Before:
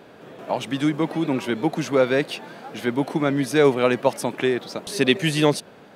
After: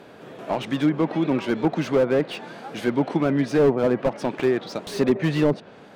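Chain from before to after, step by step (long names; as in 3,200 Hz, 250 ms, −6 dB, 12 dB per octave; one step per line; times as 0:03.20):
treble cut that deepens with the level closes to 990 Hz, closed at −13.5 dBFS
slew-rate limiting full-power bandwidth 80 Hz
level +1 dB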